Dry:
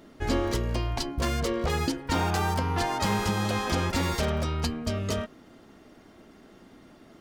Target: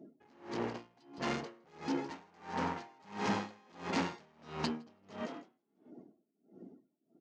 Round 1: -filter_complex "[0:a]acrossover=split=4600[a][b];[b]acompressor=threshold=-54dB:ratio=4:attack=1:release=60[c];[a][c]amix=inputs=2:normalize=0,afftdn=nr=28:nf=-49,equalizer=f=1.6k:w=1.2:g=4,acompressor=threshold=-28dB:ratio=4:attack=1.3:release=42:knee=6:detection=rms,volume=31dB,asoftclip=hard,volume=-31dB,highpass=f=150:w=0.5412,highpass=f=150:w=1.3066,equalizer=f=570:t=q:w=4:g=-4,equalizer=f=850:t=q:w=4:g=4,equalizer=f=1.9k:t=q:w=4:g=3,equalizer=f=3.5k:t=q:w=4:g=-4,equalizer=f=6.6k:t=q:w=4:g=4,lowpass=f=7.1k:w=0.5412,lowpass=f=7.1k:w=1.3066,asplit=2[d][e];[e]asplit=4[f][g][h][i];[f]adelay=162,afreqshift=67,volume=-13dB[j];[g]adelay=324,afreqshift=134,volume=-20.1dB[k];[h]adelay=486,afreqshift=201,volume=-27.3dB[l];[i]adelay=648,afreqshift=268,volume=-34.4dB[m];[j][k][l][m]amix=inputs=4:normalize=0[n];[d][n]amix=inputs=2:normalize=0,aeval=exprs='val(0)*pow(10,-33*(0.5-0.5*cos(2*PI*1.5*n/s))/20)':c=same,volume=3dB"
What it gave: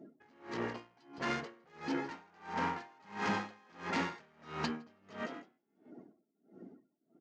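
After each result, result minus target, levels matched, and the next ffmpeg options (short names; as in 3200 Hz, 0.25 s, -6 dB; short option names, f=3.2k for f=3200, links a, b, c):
compressor: peak gain reduction +8.5 dB; 2000 Hz band +3.5 dB
-filter_complex "[0:a]acrossover=split=4600[a][b];[b]acompressor=threshold=-54dB:ratio=4:attack=1:release=60[c];[a][c]amix=inputs=2:normalize=0,afftdn=nr=28:nf=-49,equalizer=f=1.6k:w=1.2:g=4,volume=31dB,asoftclip=hard,volume=-31dB,highpass=f=150:w=0.5412,highpass=f=150:w=1.3066,equalizer=f=570:t=q:w=4:g=-4,equalizer=f=850:t=q:w=4:g=4,equalizer=f=1.9k:t=q:w=4:g=3,equalizer=f=3.5k:t=q:w=4:g=-4,equalizer=f=6.6k:t=q:w=4:g=4,lowpass=f=7.1k:w=0.5412,lowpass=f=7.1k:w=1.3066,asplit=2[d][e];[e]asplit=4[f][g][h][i];[f]adelay=162,afreqshift=67,volume=-13dB[j];[g]adelay=324,afreqshift=134,volume=-20.1dB[k];[h]adelay=486,afreqshift=201,volume=-27.3dB[l];[i]adelay=648,afreqshift=268,volume=-34.4dB[m];[j][k][l][m]amix=inputs=4:normalize=0[n];[d][n]amix=inputs=2:normalize=0,aeval=exprs='val(0)*pow(10,-33*(0.5-0.5*cos(2*PI*1.5*n/s))/20)':c=same,volume=3dB"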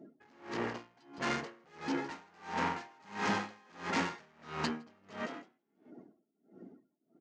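2000 Hz band +3.5 dB
-filter_complex "[0:a]acrossover=split=4600[a][b];[b]acompressor=threshold=-54dB:ratio=4:attack=1:release=60[c];[a][c]amix=inputs=2:normalize=0,afftdn=nr=28:nf=-49,equalizer=f=1.6k:w=1.2:g=-5.5,volume=31dB,asoftclip=hard,volume=-31dB,highpass=f=150:w=0.5412,highpass=f=150:w=1.3066,equalizer=f=570:t=q:w=4:g=-4,equalizer=f=850:t=q:w=4:g=4,equalizer=f=1.9k:t=q:w=4:g=3,equalizer=f=3.5k:t=q:w=4:g=-4,equalizer=f=6.6k:t=q:w=4:g=4,lowpass=f=7.1k:w=0.5412,lowpass=f=7.1k:w=1.3066,asplit=2[d][e];[e]asplit=4[f][g][h][i];[f]adelay=162,afreqshift=67,volume=-13dB[j];[g]adelay=324,afreqshift=134,volume=-20.1dB[k];[h]adelay=486,afreqshift=201,volume=-27.3dB[l];[i]adelay=648,afreqshift=268,volume=-34.4dB[m];[j][k][l][m]amix=inputs=4:normalize=0[n];[d][n]amix=inputs=2:normalize=0,aeval=exprs='val(0)*pow(10,-33*(0.5-0.5*cos(2*PI*1.5*n/s))/20)':c=same,volume=3dB"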